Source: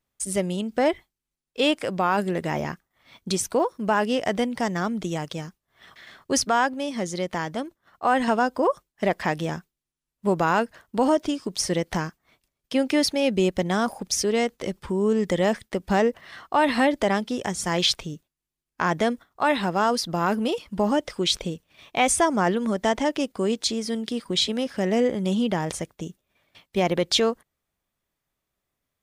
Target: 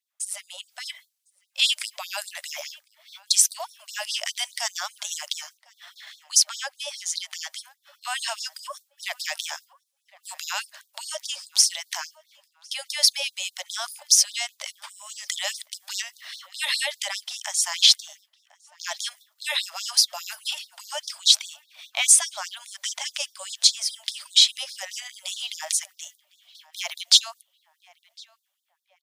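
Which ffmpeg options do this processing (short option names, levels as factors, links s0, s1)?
-filter_complex "[0:a]acrossover=split=3000[s0][s1];[s0]alimiter=limit=0.0841:level=0:latency=1:release=24[s2];[s1]dynaudnorm=f=190:g=9:m=5.01[s3];[s2][s3]amix=inputs=2:normalize=0,asplit=2[s4][s5];[s5]adelay=1056,lowpass=f=2200:p=1,volume=0.0794,asplit=2[s6][s7];[s7]adelay=1056,lowpass=f=2200:p=1,volume=0.43,asplit=2[s8][s9];[s9]adelay=1056,lowpass=f=2200:p=1,volume=0.43[s10];[s4][s6][s8][s10]amix=inputs=4:normalize=0,afftfilt=real='re*gte(b*sr/1024,530*pow(3600/530,0.5+0.5*sin(2*PI*4.9*pts/sr)))':imag='im*gte(b*sr/1024,530*pow(3600/530,0.5+0.5*sin(2*PI*4.9*pts/sr)))':win_size=1024:overlap=0.75,volume=0.891"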